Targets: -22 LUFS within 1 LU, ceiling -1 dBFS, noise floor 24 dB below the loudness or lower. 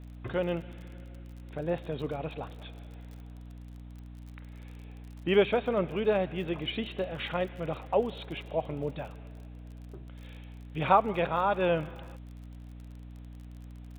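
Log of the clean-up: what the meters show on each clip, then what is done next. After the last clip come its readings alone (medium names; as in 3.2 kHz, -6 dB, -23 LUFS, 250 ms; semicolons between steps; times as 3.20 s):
tick rate 41 per s; hum 60 Hz; highest harmonic 300 Hz; hum level -43 dBFS; loudness -30.5 LUFS; peak level -8.0 dBFS; loudness target -22.0 LUFS
-> de-click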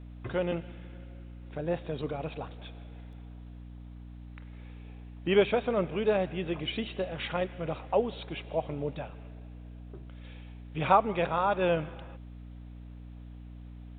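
tick rate 0.071 per s; hum 60 Hz; highest harmonic 300 Hz; hum level -43 dBFS
-> hum notches 60/120/180/240/300 Hz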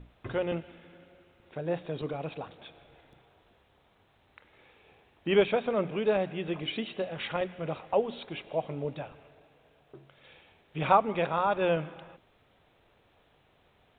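hum not found; loudness -30.5 LUFS; peak level -8.5 dBFS; loudness target -22.0 LUFS
-> trim +8.5 dB; peak limiter -1 dBFS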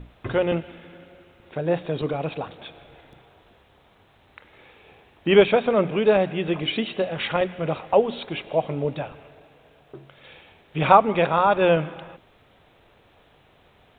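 loudness -22.5 LUFS; peak level -1.0 dBFS; noise floor -58 dBFS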